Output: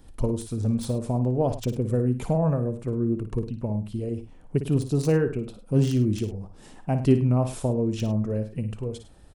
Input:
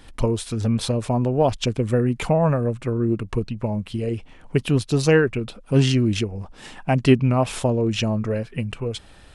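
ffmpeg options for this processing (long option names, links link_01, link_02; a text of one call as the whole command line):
ffmpeg -i in.wav -filter_complex "[0:a]equalizer=frequency=2400:width=0.47:gain=-13,acrossover=split=2300[link_01][link_02];[link_02]aeval=exprs='(mod(18.8*val(0)+1,2)-1)/18.8':channel_layout=same[link_03];[link_01][link_03]amix=inputs=2:normalize=0,aecho=1:1:56|103:0.316|0.168,volume=-3dB" out.wav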